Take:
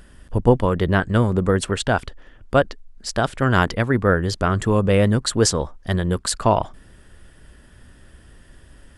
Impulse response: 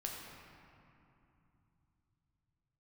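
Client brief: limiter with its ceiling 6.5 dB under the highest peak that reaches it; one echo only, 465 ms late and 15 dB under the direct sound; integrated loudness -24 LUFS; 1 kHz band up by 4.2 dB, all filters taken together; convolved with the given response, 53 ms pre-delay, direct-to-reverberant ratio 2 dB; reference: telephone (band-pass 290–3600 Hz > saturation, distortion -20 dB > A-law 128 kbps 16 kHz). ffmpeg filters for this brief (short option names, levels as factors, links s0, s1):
-filter_complex "[0:a]equalizer=f=1000:t=o:g=5.5,alimiter=limit=0.422:level=0:latency=1,aecho=1:1:465:0.178,asplit=2[s0][s1];[1:a]atrim=start_sample=2205,adelay=53[s2];[s1][s2]afir=irnorm=-1:irlink=0,volume=0.794[s3];[s0][s3]amix=inputs=2:normalize=0,highpass=290,lowpass=3600,asoftclip=threshold=0.398,volume=0.794" -ar 16000 -c:a pcm_alaw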